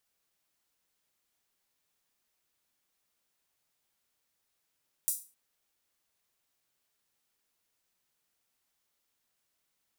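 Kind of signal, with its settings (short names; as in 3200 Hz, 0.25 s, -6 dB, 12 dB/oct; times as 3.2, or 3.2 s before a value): open hi-hat length 0.26 s, high-pass 8500 Hz, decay 0.33 s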